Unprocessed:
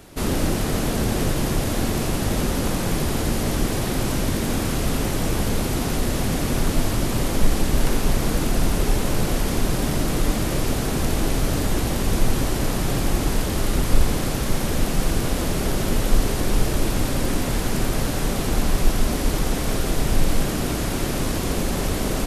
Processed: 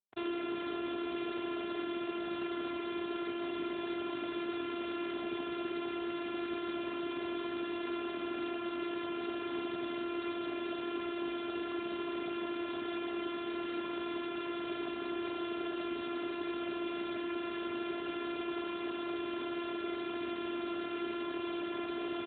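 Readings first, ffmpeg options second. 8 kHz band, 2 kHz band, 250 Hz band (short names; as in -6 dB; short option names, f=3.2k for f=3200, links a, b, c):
under -40 dB, -12.0 dB, -11.5 dB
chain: -filter_complex "[0:a]highpass=f=100:w=0.5412,highpass=f=100:w=1.3066,aemphasis=mode=production:type=bsi,afftdn=nr=24:nf=-42,afftfilt=real='hypot(re,im)*cos(PI*b)':imag='0':win_size=512:overlap=0.75,acrossover=split=530|1400[a][b][c];[a]acompressor=threshold=-35dB:ratio=4[d];[b]acompressor=threshold=-47dB:ratio=4[e];[c]acompressor=threshold=-30dB:ratio=4[f];[d][e][f]amix=inputs=3:normalize=0,asplit=2[g][h];[h]alimiter=limit=-24dB:level=0:latency=1:release=33,volume=-2dB[i];[g][i]amix=inputs=2:normalize=0,aecho=1:1:5:0.32,aresample=11025,acrusher=bits=6:mix=0:aa=0.000001,aresample=44100,asplit=2[j][k];[k]adelay=79,lowpass=f=2.1k:p=1,volume=-7.5dB,asplit=2[l][m];[m]adelay=79,lowpass=f=2.1k:p=1,volume=0.48,asplit=2[n][o];[o]adelay=79,lowpass=f=2.1k:p=1,volume=0.48,asplit=2[p][q];[q]adelay=79,lowpass=f=2.1k:p=1,volume=0.48,asplit=2[r][s];[s]adelay=79,lowpass=f=2.1k:p=1,volume=0.48,asplit=2[t][u];[u]adelay=79,lowpass=f=2.1k:p=1,volume=0.48[v];[j][l][n][p][r][t][v]amix=inputs=7:normalize=0,volume=-3dB" -ar 8000 -c:a libopencore_amrnb -b:a 12200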